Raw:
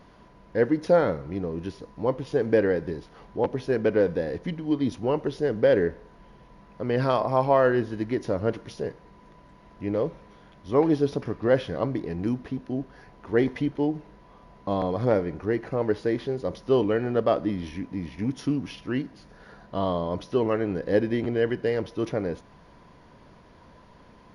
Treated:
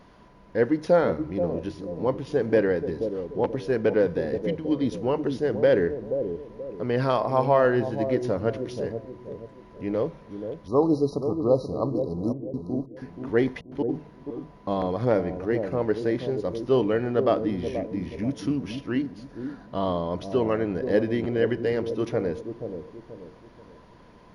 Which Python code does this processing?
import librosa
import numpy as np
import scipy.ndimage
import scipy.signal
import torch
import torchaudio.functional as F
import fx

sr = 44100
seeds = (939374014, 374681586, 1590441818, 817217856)

p1 = fx.hum_notches(x, sr, base_hz=50, count=3)
p2 = fx.spec_erase(p1, sr, start_s=10.68, length_s=2.22, low_hz=1300.0, high_hz=3800.0)
p3 = fx.step_gate(p2, sr, bpm=140, pattern='x.x..xxx.xxxxx', floor_db=-60.0, edge_ms=4.5, at=(12.31, 13.88), fade=0.02)
y = p3 + fx.echo_bbd(p3, sr, ms=480, stages=2048, feedback_pct=37, wet_db=-7.5, dry=0)